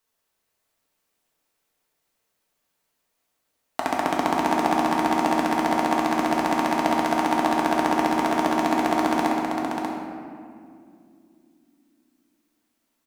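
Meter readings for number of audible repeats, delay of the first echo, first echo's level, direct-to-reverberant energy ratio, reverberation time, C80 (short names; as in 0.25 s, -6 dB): 1, 0.587 s, -5.5 dB, -4.5 dB, 2.3 s, 0.0 dB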